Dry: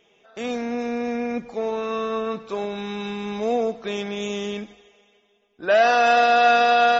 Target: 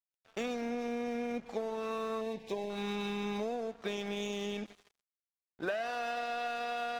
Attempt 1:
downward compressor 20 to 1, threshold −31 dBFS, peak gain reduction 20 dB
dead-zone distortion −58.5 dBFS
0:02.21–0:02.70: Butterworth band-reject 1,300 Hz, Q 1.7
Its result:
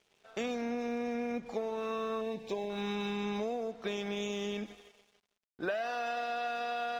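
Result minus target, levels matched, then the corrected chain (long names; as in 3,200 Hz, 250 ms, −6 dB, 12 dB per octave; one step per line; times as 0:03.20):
dead-zone distortion: distortion −9 dB
downward compressor 20 to 1, threshold −31 dBFS, peak gain reduction 20 dB
dead-zone distortion −49 dBFS
0:02.21–0:02.70: Butterworth band-reject 1,300 Hz, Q 1.7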